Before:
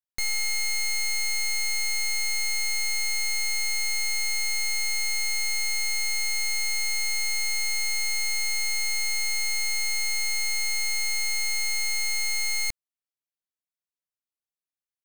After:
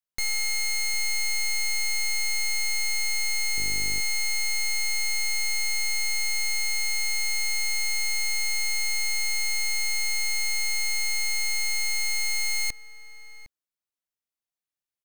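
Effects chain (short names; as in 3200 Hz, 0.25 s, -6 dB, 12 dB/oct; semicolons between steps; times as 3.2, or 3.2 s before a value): outdoor echo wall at 130 m, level -14 dB; 3.56–3.99 buzz 50 Hz, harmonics 10, -40 dBFS -5 dB/oct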